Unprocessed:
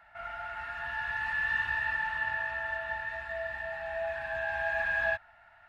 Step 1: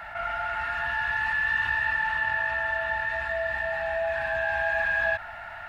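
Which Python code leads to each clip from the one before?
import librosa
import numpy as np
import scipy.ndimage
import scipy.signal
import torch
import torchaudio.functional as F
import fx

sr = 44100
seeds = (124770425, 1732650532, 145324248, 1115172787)

y = fx.env_flatten(x, sr, amount_pct=50)
y = F.gain(torch.from_numpy(y), 3.0).numpy()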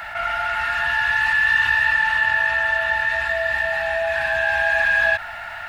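y = fx.high_shelf(x, sr, hz=2100.0, db=11.5)
y = F.gain(torch.from_numpy(y), 3.5).numpy()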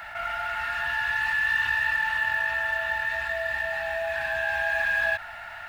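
y = fx.quant_float(x, sr, bits=4)
y = F.gain(torch.from_numpy(y), -7.0).numpy()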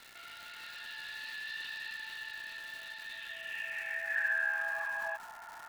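y = fx.filter_sweep_bandpass(x, sr, from_hz=4100.0, to_hz=1000.0, start_s=3.01, end_s=4.96, q=4.1)
y = fx.dmg_crackle(y, sr, seeds[0], per_s=440.0, level_db=-42.0)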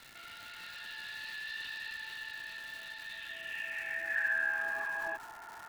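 y = fx.octave_divider(x, sr, octaves=1, level_db=0.0)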